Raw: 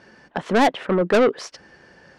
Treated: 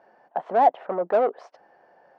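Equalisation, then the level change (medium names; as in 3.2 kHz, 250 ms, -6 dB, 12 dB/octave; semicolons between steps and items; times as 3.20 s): band-pass filter 730 Hz, Q 3.9; +4.5 dB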